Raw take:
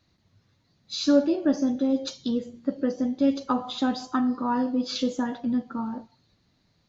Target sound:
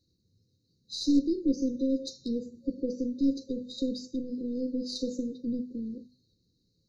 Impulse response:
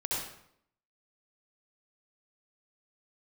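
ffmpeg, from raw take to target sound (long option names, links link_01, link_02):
-af "aeval=exprs='0.335*(cos(1*acos(clip(val(0)/0.335,-1,1)))-cos(1*PI/2))+0.0596*(cos(2*acos(clip(val(0)/0.335,-1,1)))-cos(2*PI/2))+0.0668*(cos(3*acos(clip(val(0)/0.335,-1,1)))-cos(3*PI/2))+0.0133*(cos(5*acos(clip(val(0)/0.335,-1,1)))-cos(5*PI/2))':channel_layout=same,bandreject=frequency=50:width_type=h:width=6,bandreject=frequency=100:width_type=h:width=6,bandreject=frequency=150:width_type=h:width=6,bandreject=frequency=200:width_type=h:width=6,bandreject=frequency=250:width_type=h:width=6,afftfilt=real='re*(1-between(b*sr/4096,540,3700))':imag='im*(1-between(b*sr/4096,540,3700))':win_size=4096:overlap=0.75"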